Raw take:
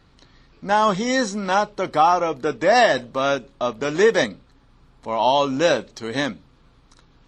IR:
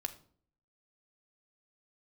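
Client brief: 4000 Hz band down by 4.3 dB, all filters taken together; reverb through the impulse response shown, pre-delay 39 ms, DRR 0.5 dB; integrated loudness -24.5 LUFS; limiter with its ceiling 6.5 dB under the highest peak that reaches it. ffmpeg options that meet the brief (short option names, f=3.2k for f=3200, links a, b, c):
-filter_complex "[0:a]equalizer=f=4k:t=o:g=-5.5,alimiter=limit=-12.5dB:level=0:latency=1,asplit=2[a][b];[1:a]atrim=start_sample=2205,adelay=39[c];[b][c]afir=irnorm=-1:irlink=0,volume=0dB[d];[a][d]amix=inputs=2:normalize=0,volume=-3.5dB"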